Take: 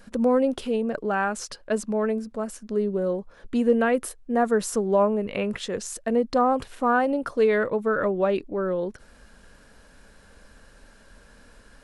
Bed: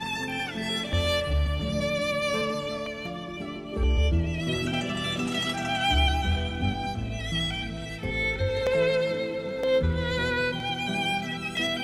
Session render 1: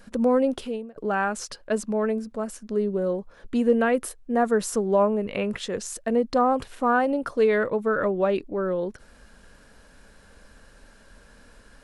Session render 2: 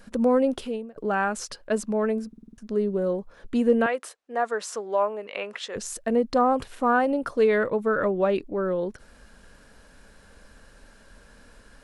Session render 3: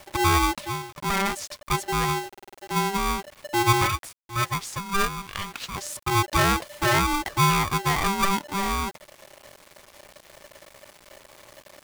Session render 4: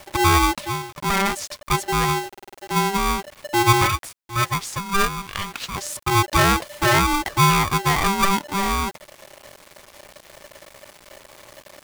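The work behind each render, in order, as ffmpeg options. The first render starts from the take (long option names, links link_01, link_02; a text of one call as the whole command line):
ffmpeg -i in.wav -filter_complex "[0:a]asplit=2[link_01][link_02];[link_01]atrim=end=0.96,asetpts=PTS-STARTPTS,afade=type=out:start_time=0.55:duration=0.41[link_03];[link_02]atrim=start=0.96,asetpts=PTS-STARTPTS,afade=type=in:duration=0.004:curve=hsin[link_04];[link_03][link_04]concat=n=2:v=0:a=1" out.wav
ffmpeg -i in.wav -filter_complex "[0:a]asettb=1/sr,asplit=3[link_01][link_02][link_03];[link_01]atrim=end=3.864[link_04];[link_02]atrim=start=3.86:end=5.76,asetpts=PTS-STARTPTS,afade=type=in:duration=0.004:curve=qsin,afade=type=out:start_time=1.896:duration=0.004:curve=qsin,highpass=610,lowpass=6800[link_05];[link_03]atrim=start=5.756[link_06];[link_04][link_05]acrossfade=duration=0.004:curve1=hsin:curve2=qsin[link_07];[link_07][link_06]acrossfade=duration=0.004:curve1=qsin:curve2=hsin,asplit=7[link_08][link_09][link_10][link_11][link_12][link_13][link_14];[link_08]atrim=end=2.332[link_15];[link_09]atrim=start=2.278:end=2.332[link_16];[link_10]atrim=start=2.278:end=2.332[link_17];[link_11]atrim=start=2.278:end=2.332[link_18];[link_12]atrim=start=2.278:end=2.332[link_19];[link_13]atrim=start=2.278:end=2.332[link_20];[link_14]atrim=start=2.578[link_21];[link_15][link_16]acrossfade=duration=0.004:curve1=hsin:curve2=hsin[link_22];[link_22][link_17]acrossfade=duration=0.004:curve1=hsin:curve2=hsin[link_23];[link_23][link_18]acrossfade=duration=0.004:curve1=hsin:curve2=hsin[link_24];[link_24][link_19]acrossfade=duration=0.004:curve1=hsin:curve2=hsin[link_25];[link_25][link_20]acrossfade=duration=0.004:curve1=hsin:curve2=hsin[link_26];[link_26][link_21]acrossfade=duration=0.004:curve1=hsin:curve2=hsin" out.wav
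ffmpeg -i in.wav -af "acrusher=bits=7:mix=0:aa=0.000001,aeval=exprs='val(0)*sgn(sin(2*PI*590*n/s))':channel_layout=same" out.wav
ffmpeg -i in.wav -af "volume=4dB" out.wav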